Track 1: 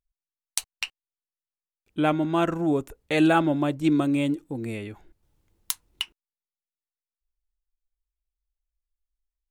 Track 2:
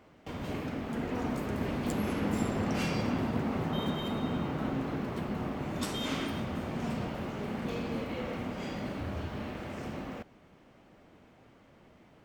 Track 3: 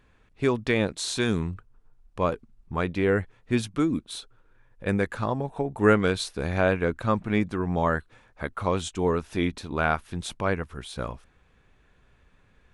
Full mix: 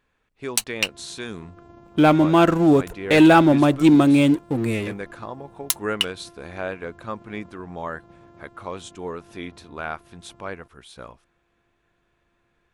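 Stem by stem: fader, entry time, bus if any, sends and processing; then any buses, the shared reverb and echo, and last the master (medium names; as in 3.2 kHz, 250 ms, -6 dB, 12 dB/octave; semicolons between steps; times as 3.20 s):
+1.0 dB, 0.00 s, no send, waveshaping leveller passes 2
-14.0 dB, 0.45 s, no send, sorted samples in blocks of 128 samples; spectral gate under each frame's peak -25 dB strong; high-order bell 3.7 kHz -12.5 dB 2.3 oct
-5.5 dB, 0.00 s, no send, bass shelf 210 Hz -9.5 dB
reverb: none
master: none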